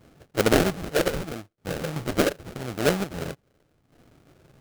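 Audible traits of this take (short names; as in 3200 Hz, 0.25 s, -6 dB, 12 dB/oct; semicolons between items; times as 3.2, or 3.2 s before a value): phasing stages 4, 0.76 Hz, lowest notch 220–3500 Hz; aliases and images of a low sample rate 1000 Hz, jitter 20%; chopped level 0.51 Hz, depth 60%, duty 55%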